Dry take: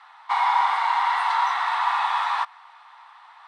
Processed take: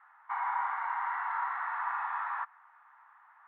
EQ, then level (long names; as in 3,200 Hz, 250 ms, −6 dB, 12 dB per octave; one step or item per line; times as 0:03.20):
resonant band-pass 1,600 Hz, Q 3
high-frequency loss of the air 470 metres
spectral tilt −4 dB per octave
0.0 dB